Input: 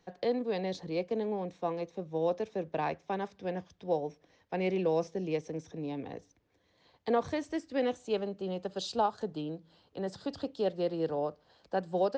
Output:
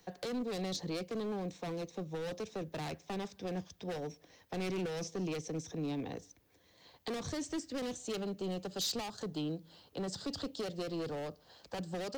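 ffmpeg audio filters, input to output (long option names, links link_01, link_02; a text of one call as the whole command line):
ffmpeg -i in.wav -filter_complex "[0:a]aemphasis=mode=production:type=50fm,volume=33.5dB,asoftclip=hard,volume=-33.5dB,acrossover=split=330|3000[link_01][link_02][link_03];[link_02]acompressor=threshold=-46dB:ratio=4[link_04];[link_01][link_04][link_03]amix=inputs=3:normalize=0,volume=3dB" out.wav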